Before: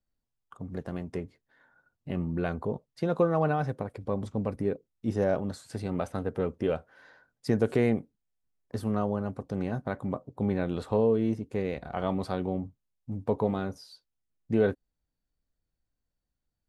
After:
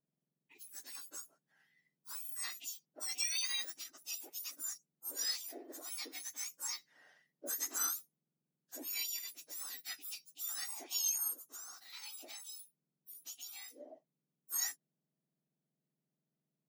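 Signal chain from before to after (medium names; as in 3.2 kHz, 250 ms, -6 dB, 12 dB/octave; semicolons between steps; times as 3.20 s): spectrum inverted on a logarithmic axis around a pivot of 1.7 kHz; 11.33–13.80 s: compression 2.5:1, threshold -44 dBFS, peak gain reduction 9.5 dB; trim -5.5 dB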